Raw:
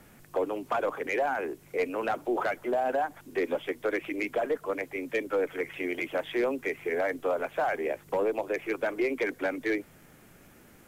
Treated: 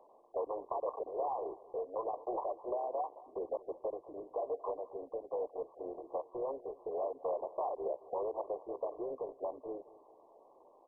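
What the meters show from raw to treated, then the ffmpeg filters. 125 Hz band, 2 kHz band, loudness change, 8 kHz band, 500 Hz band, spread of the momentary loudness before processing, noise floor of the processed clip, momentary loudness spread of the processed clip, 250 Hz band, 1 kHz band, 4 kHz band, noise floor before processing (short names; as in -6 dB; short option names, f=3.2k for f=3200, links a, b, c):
under -15 dB, under -40 dB, -9.0 dB, n/a, -8.0 dB, 4 LU, -63 dBFS, 6 LU, -15.5 dB, -7.0 dB, under -35 dB, -56 dBFS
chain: -filter_complex "[0:a]highpass=f=490:w=0.5412,highpass=f=490:w=1.3066,equalizer=f=1.5k:w=5.6:g=-7.5,alimiter=level_in=0.5dB:limit=-24dB:level=0:latency=1:release=363,volume=-0.5dB,acompressor=threshold=-34dB:ratio=6,asoftclip=type=tanh:threshold=-29.5dB,asplit=2[a][b];[b]adelay=15,volume=-13dB[c];[a][c]amix=inputs=2:normalize=0,asplit=2[d][e];[e]aecho=0:1:216|432|648|864:0.1|0.052|0.027|0.0141[f];[d][f]amix=inputs=2:normalize=0,volume=2dB" -ar 24000 -c:a mp2 -b:a 8k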